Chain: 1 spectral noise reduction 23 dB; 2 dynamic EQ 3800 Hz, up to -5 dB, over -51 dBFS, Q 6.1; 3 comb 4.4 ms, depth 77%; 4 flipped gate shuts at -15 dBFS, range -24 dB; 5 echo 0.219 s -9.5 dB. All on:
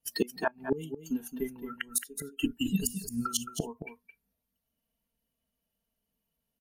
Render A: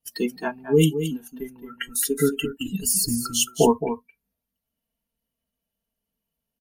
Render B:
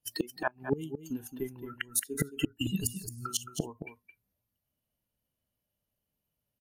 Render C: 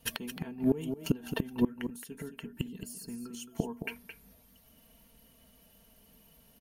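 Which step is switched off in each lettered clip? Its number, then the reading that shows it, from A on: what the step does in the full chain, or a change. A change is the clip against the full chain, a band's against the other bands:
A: 4, momentary loudness spread change +6 LU; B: 3, 125 Hz band +3.5 dB; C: 1, 8 kHz band -7.5 dB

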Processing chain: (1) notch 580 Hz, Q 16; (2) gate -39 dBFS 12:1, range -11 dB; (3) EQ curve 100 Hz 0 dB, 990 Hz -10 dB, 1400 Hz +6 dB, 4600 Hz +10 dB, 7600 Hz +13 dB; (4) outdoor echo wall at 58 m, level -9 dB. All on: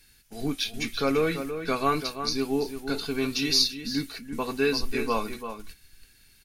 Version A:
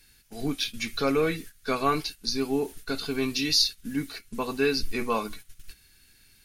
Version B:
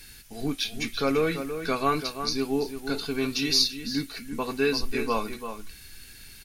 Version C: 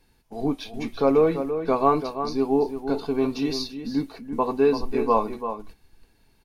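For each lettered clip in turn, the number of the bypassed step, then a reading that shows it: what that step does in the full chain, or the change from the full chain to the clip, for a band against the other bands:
4, echo-to-direct -10.0 dB to none; 2, momentary loudness spread change +7 LU; 3, 8 kHz band -15.0 dB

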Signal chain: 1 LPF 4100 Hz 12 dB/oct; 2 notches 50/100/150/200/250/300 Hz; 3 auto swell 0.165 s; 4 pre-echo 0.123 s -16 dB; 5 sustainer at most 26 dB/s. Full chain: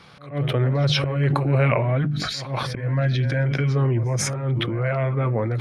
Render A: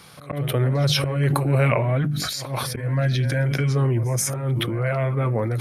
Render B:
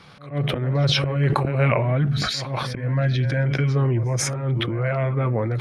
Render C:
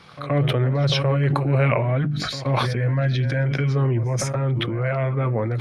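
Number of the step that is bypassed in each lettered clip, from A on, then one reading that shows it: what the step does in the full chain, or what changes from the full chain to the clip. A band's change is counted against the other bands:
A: 1, 8 kHz band +4.0 dB; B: 2, 4 kHz band +1.5 dB; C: 3, 8 kHz band -3.5 dB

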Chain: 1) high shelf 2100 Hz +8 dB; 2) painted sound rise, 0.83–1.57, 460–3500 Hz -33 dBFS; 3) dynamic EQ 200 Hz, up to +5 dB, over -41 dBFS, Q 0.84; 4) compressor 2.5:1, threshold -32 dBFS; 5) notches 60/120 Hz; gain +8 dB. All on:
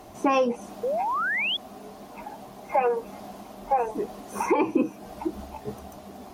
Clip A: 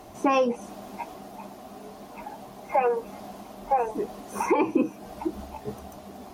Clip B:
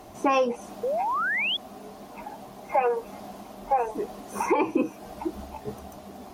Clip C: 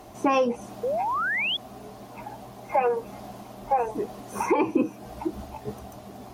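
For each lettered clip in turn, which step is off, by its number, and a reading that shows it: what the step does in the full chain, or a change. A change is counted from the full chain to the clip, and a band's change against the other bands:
2, 4 kHz band -11.5 dB; 3, 250 Hz band -2.0 dB; 5, 125 Hz band +3.0 dB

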